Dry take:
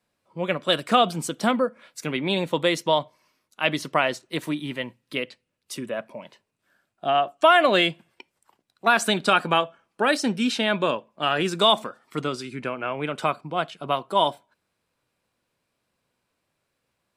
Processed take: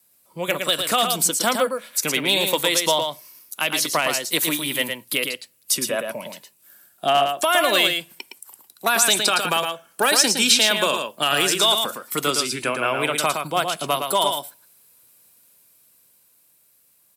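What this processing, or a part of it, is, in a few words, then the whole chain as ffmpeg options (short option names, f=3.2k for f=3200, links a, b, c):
FM broadcast chain: -filter_complex "[0:a]asettb=1/sr,asplit=3[a][b][c];[a]atrim=end=10.014[d];[b]atrim=start=10.01:end=11.45,asetpts=PTS-STARTPTS,afade=t=in:d=0.004:c=qsin,afade=t=out:st=1.436:d=0.004:c=qsin,highshelf=f=5.3k:g=5[e];[c]atrim=start=11.446[f];[d][e]acrossfade=d=0.004:c1=hsin:c2=qsin[g];[g][f]acrossfade=d=0.004:c1=qsin:c2=hsin,highpass=75,dynaudnorm=f=280:g=13:m=6.5dB,acrossover=split=370|6800[h][i][j];[h]acompressor=threshold=-35dB:ratio=4[k];[i]acompressor=threshold=-16dB:ratio=4[l];[j]acompressor=threshold=-52dB:ratio=4[m];[k][l][m]amix=inputs=3:normalize=0,aemphasis=mode=production:type=50fm,alimiter=limit=-11dB:level=0:latency=1:release=215,asoftclip=type=hard:threshold=-13dB,lowpass=f=15k:w=0.5412,lowpass=f=15k:w=1.3066,aemphasis=mode=production:type=50fm,aecho=1:1:113:0.531,volume=2dB"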